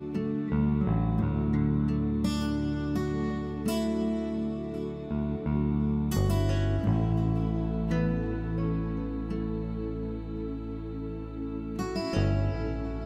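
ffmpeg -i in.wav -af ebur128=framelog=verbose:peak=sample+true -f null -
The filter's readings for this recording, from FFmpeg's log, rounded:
Integrated loudness:
  I:         -29.8 LUFS
  Threshold: -39.8 LUFS
Loudness range:
  LRA:         5.5 LU
  Threshold: -49.9 LUFS
  LRA low:   -33.6 LUFS
  LRA high:  -28.2 LUFS
Sample peak:
  Peak:      -13.5 dBFS
True peak:
  Peak:      -13.5 dBFS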